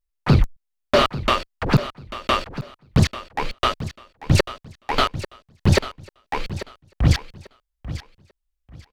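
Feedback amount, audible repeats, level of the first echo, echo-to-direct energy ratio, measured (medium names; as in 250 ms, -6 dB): 23%, 2, -14.0 dB, -13.5 dB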